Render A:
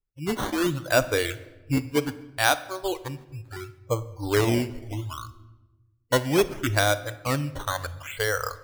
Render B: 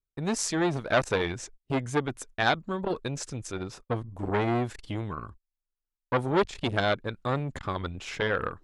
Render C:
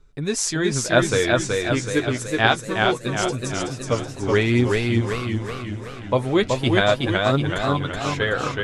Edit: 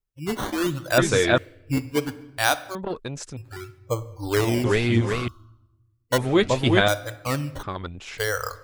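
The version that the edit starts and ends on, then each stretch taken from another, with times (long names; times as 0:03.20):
A
0:00.98–0:01.38: punch in from C
0:02.75–0:03.37: punch in from B
0:04.64–0:05.28: punch in from C
0:06.18–0:06.88: punch in from C
0:07.63–0:08.18: punch in from B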